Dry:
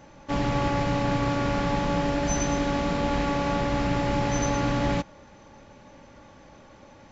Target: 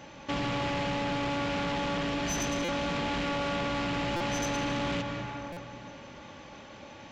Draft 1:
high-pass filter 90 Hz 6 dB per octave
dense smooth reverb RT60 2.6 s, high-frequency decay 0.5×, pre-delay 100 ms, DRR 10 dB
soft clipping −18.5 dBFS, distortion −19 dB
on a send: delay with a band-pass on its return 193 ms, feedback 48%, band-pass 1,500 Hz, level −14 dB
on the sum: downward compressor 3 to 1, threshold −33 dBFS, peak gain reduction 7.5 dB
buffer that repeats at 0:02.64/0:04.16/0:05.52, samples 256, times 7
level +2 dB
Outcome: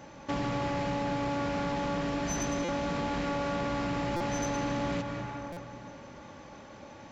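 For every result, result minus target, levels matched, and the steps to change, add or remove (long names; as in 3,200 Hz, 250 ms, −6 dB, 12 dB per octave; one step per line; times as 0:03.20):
4,000 Hz band −5.5 dB; soft clipping: distortion −7 dB
add after downward compressor: parametric band 3,000 Hz +7.5 dB 1.1 octaves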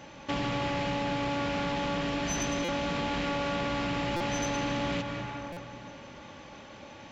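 soft clipping: distortion −7 dB
change: soft clipping −24.5 dBFS, distortion −12 dB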